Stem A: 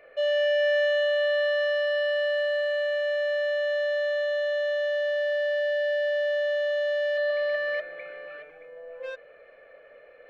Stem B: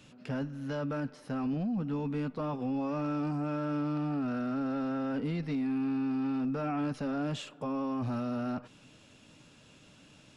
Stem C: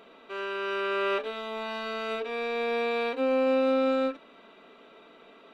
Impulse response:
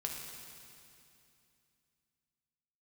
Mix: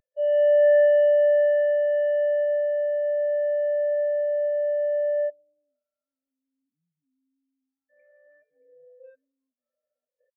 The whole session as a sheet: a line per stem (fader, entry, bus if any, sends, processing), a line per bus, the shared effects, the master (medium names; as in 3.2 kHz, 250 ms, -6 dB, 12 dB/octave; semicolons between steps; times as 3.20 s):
+2.0 dB, 0.00 s, muted 5.30–7.89 s, no bus, send -12 dB, gate with hold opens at -39 dBFS; upward compressor, threshold -30 dBFS
-4.0 dB, 1.50 s, bus A, no send, lamp-driven phase shifter 0.51 Hz
mute
bus A: 0.0 dB, peak limiter -39.5 dBFS, peak gain reduction 9.5 dB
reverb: on, RT60 2.6 s, pre-delay 3 ms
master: spectral contrast expander 2.5:1